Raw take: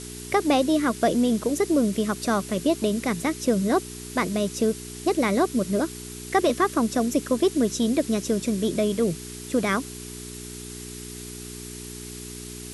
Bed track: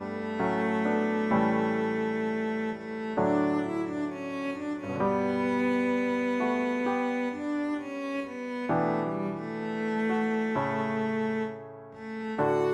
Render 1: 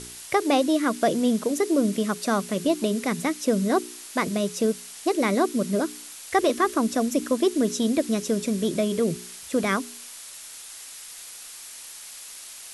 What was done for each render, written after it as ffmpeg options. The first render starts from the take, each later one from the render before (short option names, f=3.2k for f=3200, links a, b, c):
-af "bandreject=f=60:t=h:w=4,bandreject=f=120:t=h:w=4,bandreject=f=180:t=h:w=4,bandreject=f=240:t=h:w=4,bandreject=f=300:t=h:w=4,bandreject=f=360:t=h:w=4,bandreject=f=420:t=h:w=4"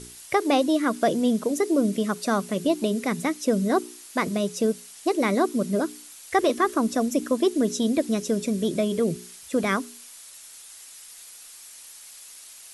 -af "afftdn=nr=6:nf=-42"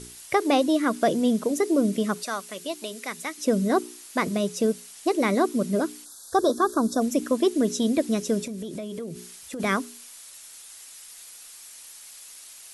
-filter_complex "[0:a]asettb=1/sr,asplit=3[a][b][c];[a]atrim=end=2.234[d];[b]atrim=start=2.23:end=3.38,asetpts=PTS-STARTPTS,afade=t=in:d=0.004:c=qsin,afade=t=out:st=1.146:d=0.004:c=qsin,highpass=f=1.4k:p=1[e];[c]atrim=start=3.376[f];[d][e]acrossfade=d=0.004:c1=hsin:c2=qsin[g];[g][f]acrossfade=d=0.004:c1=qsin:c2=hsin,asplit=3[h][i][j];[h]afade=t=out:st=6.04:d=0.02[k];[i]asuperstop=centerf=2400:order=12:qfactor=1.3,afade=t=in:st=6.04:d=0.02,afade=t=out:st=7:d=0.02[l];[j]afade=t=in:st=7:d=0.02[m];[k][l][m]amix=inputs=3:normalize=0,asplit=3[n][o][p];[n]afade=t=out:st=8.44:d=0.02[q];[o]acompressor=threshold=-31dB:ratio=6:attack=3.2:release=140:knee=1:detection=peak,afade=t=in:st=8.44:d=0.02,afade=t=out:st=9.59:d=0.02[r];[p]afade=t=in:st=9.59:d=0.02[s];[q][r][s]amix=inputs=3:normalize=0"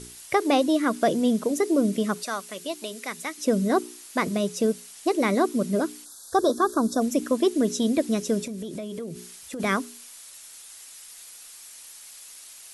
-af anull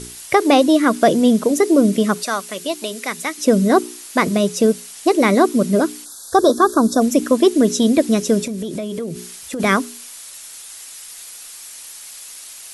-af "volume=8.5dB,alimiter=limit=-2dB:level=0:latency=1"